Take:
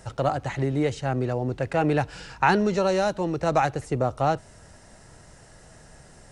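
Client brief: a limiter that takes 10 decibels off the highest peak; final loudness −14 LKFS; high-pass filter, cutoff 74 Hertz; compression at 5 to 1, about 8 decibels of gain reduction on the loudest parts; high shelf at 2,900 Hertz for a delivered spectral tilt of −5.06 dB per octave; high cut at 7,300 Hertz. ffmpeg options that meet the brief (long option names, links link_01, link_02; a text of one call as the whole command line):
ffmpeg -i in.wav -af "highpass=74,lowpass=7300,highshelf=frequency=2900:gain=-6,acompressor=threshold=-25dB:ratio=5,volume=18.5dB,alimiter=limit=-3dB:level=0:latency=1" out.wav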